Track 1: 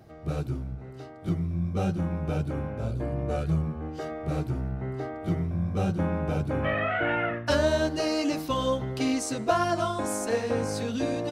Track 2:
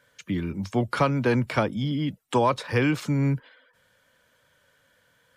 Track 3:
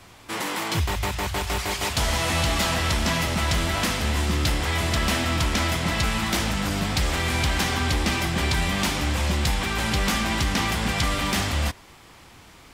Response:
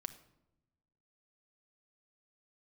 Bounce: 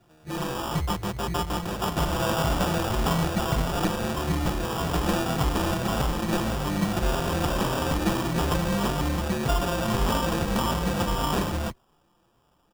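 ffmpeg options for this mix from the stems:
-filter_complex "[0:a]volume=-10.5dB[a];[2:a]afwtdn=0.0282,asplit=2[b][c];[c]adelay=5.6,afreqshift=1.7[d];[b][d]amix=inputs=2:normalize=1,volume=1.5dB[e];[a][e]amix=inputs=2:normalize=0,aecho=1:1:5.8:0.56,acrusher=samples=21:mix=1:aa=0.000001"

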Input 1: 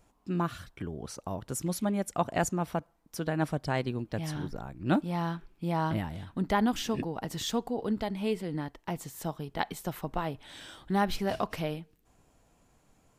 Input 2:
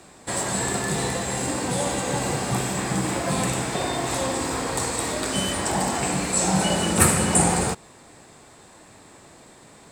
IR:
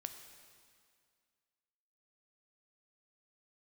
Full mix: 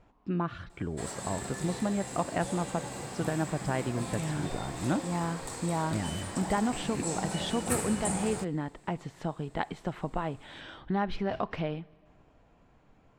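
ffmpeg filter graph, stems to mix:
-filter_complex "[0:a]lowpass=2.8k,acompressor=threshold=-34dB:ratio=2,volume=2.5dB,asplit=2[a][b];[b]volume=-12dB[c];[1:a]adelay=700,volume=-14dB[d];[2:a]atrim=start_sample=2205[e];[c][e]afir=irnorm=-1:irlink=0[f];[a][d][f]amix=inputs=3:normalize=0"

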